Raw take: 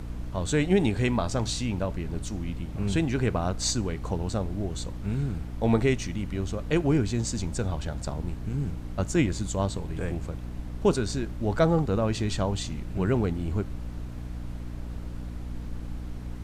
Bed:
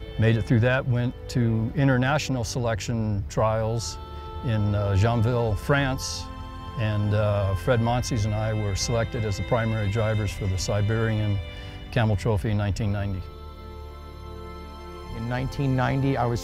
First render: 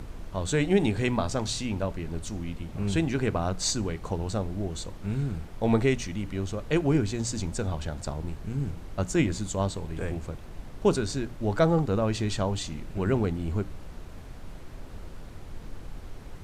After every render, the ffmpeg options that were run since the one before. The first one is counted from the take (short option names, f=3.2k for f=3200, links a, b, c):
-af "bandreject=f=60:t=h:w=6,bandreject=f=120:t=h:w=6,bandreject=f=180:t=h:w=6,bandreject=f=240:t=h:w=6,bandreject=f=300:t=h:w=6"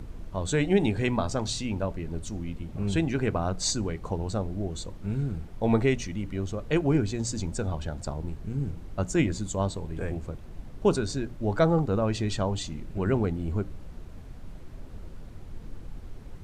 -af "afftdn=nr=6:nf=-43"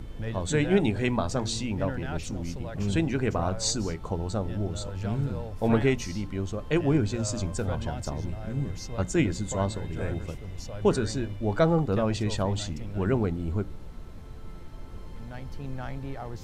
-filter_complex "[1:a]volume=-14dB[a];[0:a][a]amix=inputs=2:normalize=0"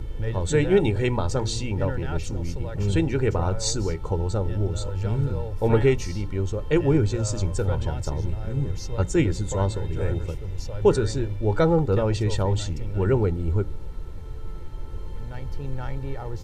-af "lowshelf=f=420:g=5,aecho=1:1:2.2:0.55"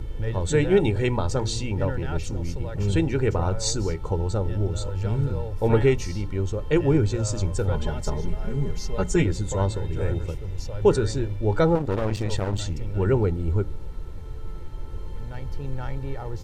-filter_complex "[0:a]asettb=1/sr,asplit=3[a][b][c];[a]atrim=end=7.744[d];[b]atrim=start=7.74:end=9.23,asetpts=PTS-STARTPTS,afade=t=in:d=0.004:c=qsin,afade=t=out:st=1.486:d=0.004:c=qsin,aecho=1:1:4.8:0.79,atrim=end_sample=65709[e];[c]atrim=start=9.226[f];[d][e]acrossfade=d=0.004:c1=hsin:c2=qsin[g];[g][f]acrossfade=d=0.004:c1=qsin:c2=hsin,asettb=1/sr,asplit=3[h][i][j];[h]atrim=end=11.754[k];[i]atrim=start=11.75:end=12.61,asetpts=PTS-STARTPTS,afade=t=in:d=0.004:c=qsin,afade=t=out:st=0.856:d=0.004:c=qsin,aeval=exprs='clip(val(0),-1,0.0211)':c=same[l];[j]atrim=start=12.606[m];[k][l]acrossfade=d=0.004:c1=hsin:c2=qsin[n];[n][m]acrossfade=d=0.004:c1=qsin:c2=hsin"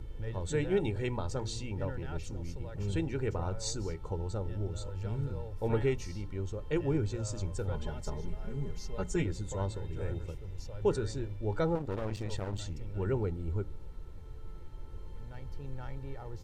-af "volume=-10.5dB"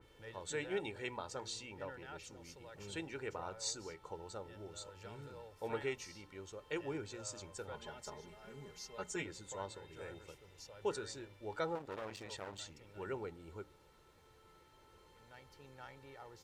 -af "highpass=f=1.1k:p=1,adynamicequalizer=threshold=0.00126:dfrequency=3200:dqfactor=0.7:tfrequency=3200:tqfactor=0.7:attack=5:release=100:ratio=0.375:range=1.5:mode=cutabove:tftype=highshelf"